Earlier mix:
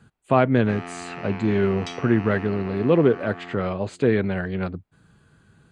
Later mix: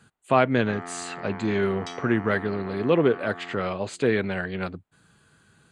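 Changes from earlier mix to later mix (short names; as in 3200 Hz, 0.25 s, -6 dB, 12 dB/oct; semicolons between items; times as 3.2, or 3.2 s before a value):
first sound: add polynomial smoothing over 41 samples; second sound -7.0 dB; master: add tilt +2 dB/oct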